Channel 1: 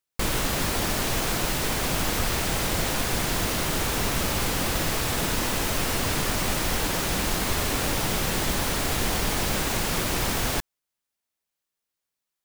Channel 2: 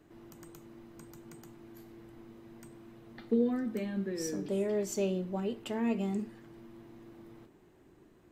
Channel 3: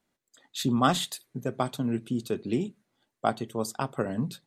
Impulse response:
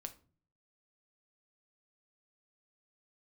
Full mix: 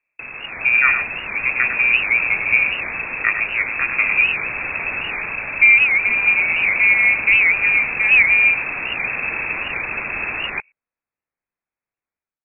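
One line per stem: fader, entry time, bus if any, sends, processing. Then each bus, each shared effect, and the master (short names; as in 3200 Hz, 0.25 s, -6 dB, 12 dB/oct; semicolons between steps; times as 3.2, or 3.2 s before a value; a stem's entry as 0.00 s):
-10.0 dB, 0.00 s, no send, no echo send, dry
0.0 dB, 2.30 s, no send, echo send -16.5 dB, low shelf 370 Hz +12 dB
-4.0 dB, 0.00 s, no send, echo send -8 dB, low shelf 240 Hz +10.5 dB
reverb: off
echo: echo 0.102 s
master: inverted band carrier 2600 Hz; AGC gain up to 11 dB; record warp 78 rpm, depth 160 cents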